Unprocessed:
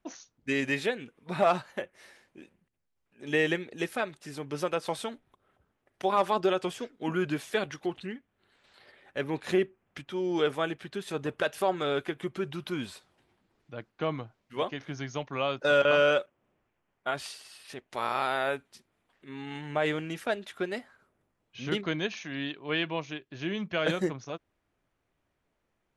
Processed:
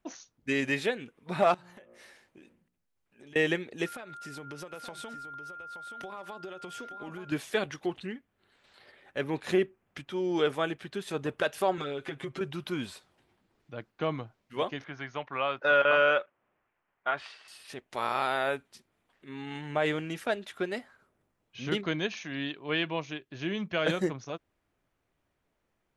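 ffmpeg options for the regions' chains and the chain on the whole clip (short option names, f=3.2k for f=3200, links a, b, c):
-filter_complex "[0:a]asettb=1/sr,asplit=3[a][b][c];[a]atrim=end=1.544[d];[b]atrim=start=1.54:end=3.36,asetpts=PTS-STARTPTS,afade=t=in:d=0.004:c=qsin,afade=t=out:st=1.816:d=0.004:c=qsin,bandreject=f=58.99:t=h:w=4,bandreject=f=117.98:t=h:w=4,bandreject=f=176.97:t=h:w=4,bandreject=f=235.96:t=h:w=4,bandreject=f=294.95:t=h:w=4,bandreject=f=353.94:t=h:w=4,bandreject=f=412.93:t=h:w=4,bandreject=f=471.92:t=h:w=4,bandreject=f=530.91:t=h:w=4,bandreject=f=589.9:t=h:w=4,bandreject=f=648.89:t=h:w=4,bandreject=f=707.88:t=h:w=4,bandreject=f=766.87:t=h:w=4,bandreject=f=825.86:t=h:w=4,bandreject=f=884.85:t=h:w=4,bandreject=f=943.84:t=h:w=4,bandreject=f=1.00283k:t=h:w=4,bandreject=f=1.06182k:t=h:w=4,bandreject=f=1.12081k:t=h:w=4,bandreject=f=1.1798k:t=h:w=4,bandreject=f=1.23879k:t=h:w=4,bandreject=f=1.29778k:t=h:w=4,bandreject=f=1.35677k:t=h:w=4,acompressor=threshold=-48dB:ratio=16:attack=3.2:release=140:knee=1:detection=peak[e];[c]atrim=start=3.356[f];[d][e]acrossfade=d=0.004:c1=hsin:c2=qsin[g];[g][f]acrossfade=d=0.004:c1=qsin:c2=hsin,asettb=1/sr,asplit=3[h][i][j];[h]atrim=end=3.864[k];[i]atrim=start=3.86:end=7.32,asetpts=PTS-STARTPTS,afade=t=in:d=0.004:c=qsin,afade=t=out:st=3.456:d=0.004:c=qsin,aeval=exprs='val(0)+0.00794*sin(2*PI*1400*n/s)':c=same,acompressor=threshold=-38dB:ratio=12:attack=3.2:release=140:knee=1:detection=peak,aecho=1:1:875:0.335,atrim=end_sample=152586[l];[j]atrim=start=7.316[m];[k][l]acrossfade=d=0.004:c1=hsin:c2=qsin[n];[n][m]acrossfade=d=0.004:c1=qsin:c2=hsin,asettb=1/sr,asplit=3[o][p][q];[o]atrim=end=11.774[r];[p]atrim=start=11.77:end=12.41,asetpts=PTS-STARTPTS,afade=t=in:d=0.004:c=qsin,afade=t=out:st=0.636:d=0.004:c=qsin,lowpass=9.2k,aecho=1:1:7.5:0.88,atrim=end_sample=28224,acompressor=threshold=-31dB:ratio=12:attack=3.2:release=140:knee=1:detection=peak[s];[q]atrim=start=12.406[t];[r][s]acrossfade=d=0.004:c1=hsin:c2=qsin[u];[u][t]acrossfade=d=0.004:c1=qsin:c2=hsin,asettb=1/sr,asplit=3[v][w][x];[v]atrim=end=14.844[y];[w]atrim=start=14.84:end=17.48,asetpts=PTS-STARTPTS,afade=t=in:d=0.004:c=qsin,afade=t=out:st=2.636:d=0.004:c=qsin,lowpass=1.8k,tiltshelf=f=730:g=-8.5[z];[x]atrim=start=17.476[aa];[y][z]acrossfade=d=0.004:c1=hsin:c2=qsin[ab];[ab][aa]acrossfade=d=0.004:c1=qsin:c2=hsin"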